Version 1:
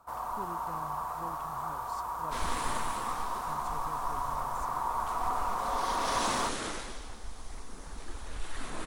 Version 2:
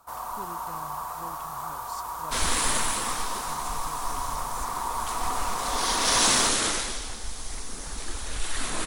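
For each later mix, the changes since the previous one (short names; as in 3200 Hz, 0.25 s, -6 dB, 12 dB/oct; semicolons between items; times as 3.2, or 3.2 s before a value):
second sound +6.0 dB; master: add high shelf 2700 Hz +11 dB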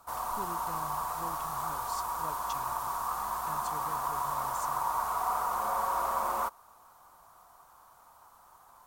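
second sound: muted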